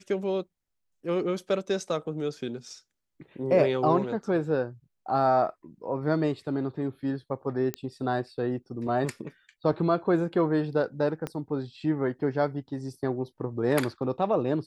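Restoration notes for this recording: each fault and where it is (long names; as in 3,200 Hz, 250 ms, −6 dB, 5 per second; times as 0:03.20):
0:07.74: click −15 dBFS
0:11.27: click −19 dBFS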